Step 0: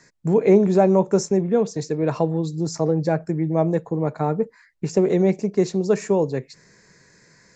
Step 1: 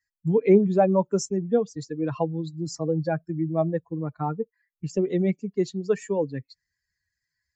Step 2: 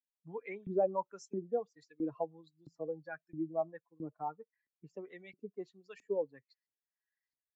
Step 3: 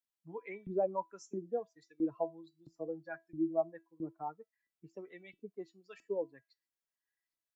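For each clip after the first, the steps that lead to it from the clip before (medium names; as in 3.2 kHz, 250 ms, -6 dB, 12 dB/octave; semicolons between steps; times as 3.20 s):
expander on every frequency bin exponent 2
LFO band-pass saw up 1.5 Hz 270–3600 Hz; trim -6.5 dB
feedback comb 330 Hz, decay 0.21 s, harmonics all, mix 70%; trim +7.5 dB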